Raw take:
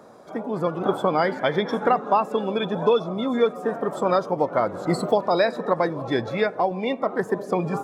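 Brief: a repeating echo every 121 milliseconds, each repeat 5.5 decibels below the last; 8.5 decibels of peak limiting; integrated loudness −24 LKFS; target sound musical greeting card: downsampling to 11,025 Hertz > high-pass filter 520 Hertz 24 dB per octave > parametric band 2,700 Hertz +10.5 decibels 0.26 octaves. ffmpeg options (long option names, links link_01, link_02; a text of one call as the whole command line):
ffmpeg -i in.wav -af "alimiter=limit=-15dB:level=0:latency=1,aecho=1:1:121|242|363|484|605|726|847:0.531|0.281|0.149|0.079|0.0419|0.0222|0.0118,aresample=11025,aresample=44100,highpass=frequency=520:width=0.5412,highpass=frequency=520:width=1.3066,equalizer=frequency=2700:width_type=o:width=0.26:gain=10.5,volume=4dB" out.wav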